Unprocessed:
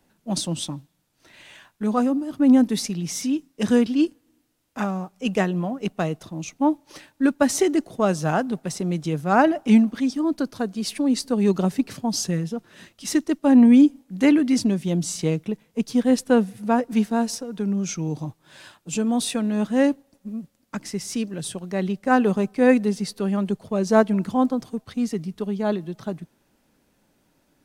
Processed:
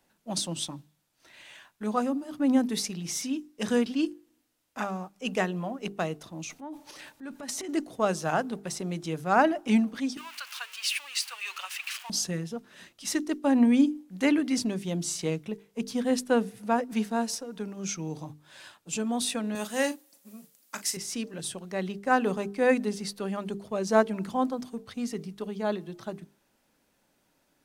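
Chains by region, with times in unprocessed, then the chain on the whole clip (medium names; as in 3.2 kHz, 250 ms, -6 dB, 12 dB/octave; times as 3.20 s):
6.43–7.69 s: compression 16:1, threshold -27 dBFS + transient shaper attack -7 dB, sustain +10 dB
10.17–12.10 s: jump at every zero crossing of -34.5 dBFS + high-pass 1.1 kHz 24 dB/octave + peaking EQ 2.7 kHz +12 dB 0.53 oct
19.55–20.97 s: RIAA curve recording + doubling 38 ms -12 dB
whole clip: bass shelf 370 Hz -7 dB; hum notches 50/100/150/200/250/300/350/400/450 Hz; trim -2.5 dB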